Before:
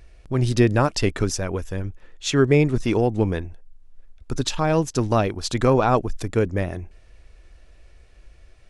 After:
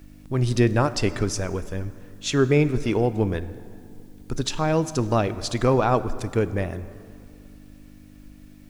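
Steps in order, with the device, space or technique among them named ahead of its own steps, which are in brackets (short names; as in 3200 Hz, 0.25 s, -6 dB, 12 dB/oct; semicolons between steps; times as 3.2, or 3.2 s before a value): video cassette with head-switching buzz (buzz 50 Hz, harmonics 6, -47 dBFS 0 dB/oct; white noise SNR 40 dB); plate-style reverb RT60 2.4 s, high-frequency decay 0.6×, DRR 13.5 dB; gain -2 dB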